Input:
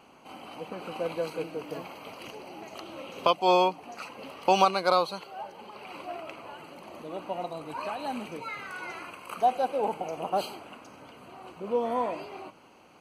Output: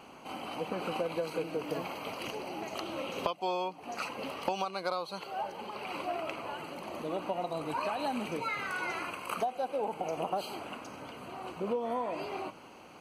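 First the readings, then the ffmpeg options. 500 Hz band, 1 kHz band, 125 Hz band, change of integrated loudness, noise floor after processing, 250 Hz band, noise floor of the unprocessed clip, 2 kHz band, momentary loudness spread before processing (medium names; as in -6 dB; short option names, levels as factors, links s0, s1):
-5.0 dB, -6.5 dB, -1.5 dB, -6.5 dB, -52 dBFS, -2.0 dB, -55 dBFS, -0.5 dB, 21 LU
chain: -af "acompressor=threshold=0.0224:ratio=16,volume=1.58"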